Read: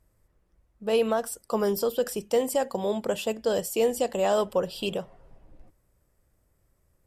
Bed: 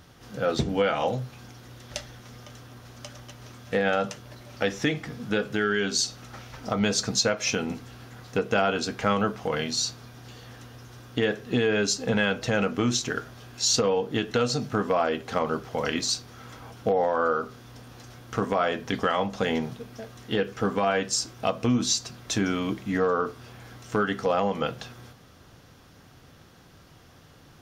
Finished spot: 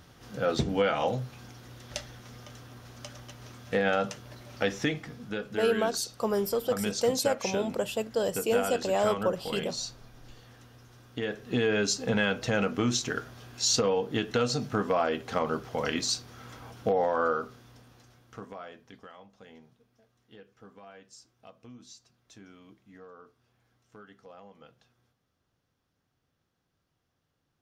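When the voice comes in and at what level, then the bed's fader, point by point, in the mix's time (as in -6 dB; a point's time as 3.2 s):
4.70 s, -2.5 dB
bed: 4.75 s -2 dB
5.32 s -8.5 dB
11.21 s -8.5 dB
11.63 s -2.5 dB
17.27 s -2.5 dB
19.21 s -26 dB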